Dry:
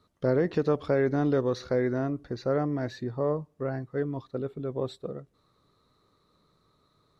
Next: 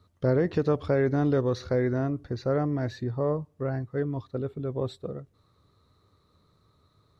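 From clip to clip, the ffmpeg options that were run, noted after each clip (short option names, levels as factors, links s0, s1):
-af "equalizer=f=87:w=1.8:g=13.5"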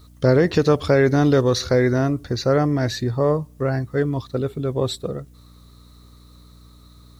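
-af "aeval=exprs='val(0)+0.002*(sin(2*PI*60*n/s)+sin(2*PI*2*60*n/s)/2+sin(2*PI*3*60*n/s)/3+sin(2*PI*4*60*n/s)/4+sin(2*PI*5*60*n/s)/5)':c=same,crystalizer=i=4.5:c=0,volume=2.37"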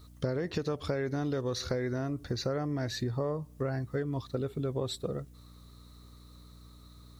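-af "acompressor=threshold=0.0708:ratio=10,volume=0.531"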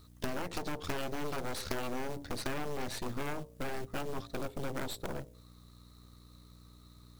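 -af "acrusher=bits=5:mode=log:mix=0:aa=0.000001,bandreject=f=56.75:t=h:w=4,bandreject=f=113.5:t=h:w=4,bandreject=f=170.25:t=h:w=4,bandreject=f=227:t=h:w=4,bandreject=f=283.75:t=h:w=4,bandreject=f=340.5:t=h:w=4,bandreject=f=397.25:t=h:w=4,bandreject=f=454:t=h:w=4,bandreject=f=510.75:t=h:w=4,bandreject=f=567.5:t=h:w=4,bandreject=f=624.25:t=h:w=4,bandreject=f=681:t=h:w=4,aeval=exprs='0.112*(cos(1*acos(clip(val(0)/0.112,-1,1)))-cos(1*PI/2))+0.0398*(cos(3*acos(clip(val(0)/0.112,-1,1)))-cos(3*PI/2))+0.01*(cos(7*acos(clip(val(0)/0.112,-1,1)))-cos(7*PI/2))+0.0141*(cos(8*acos(clip(val(0)/0.112,-1,1)))-cos(8*PI/2))':c=same"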